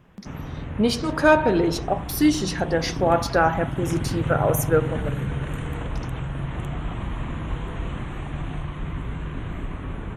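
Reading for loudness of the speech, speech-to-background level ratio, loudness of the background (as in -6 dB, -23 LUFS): -22.5 LUFS, 8.0 dB, -30.5 LUFS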